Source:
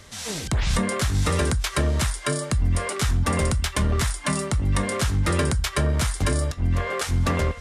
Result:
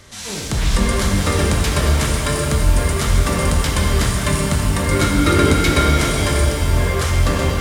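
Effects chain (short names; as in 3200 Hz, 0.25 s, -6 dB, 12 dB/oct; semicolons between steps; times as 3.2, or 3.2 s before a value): reverse delay 0.147 s, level -11 dB; 4.91–5.89 small resonant body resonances 300/1400/2200/3800 Hz, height 13 dB, ringing for 40 ms; shimmer reverb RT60 3.4 s, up +7 st, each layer -8 dB, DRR -1 dB; gain +1.5 dB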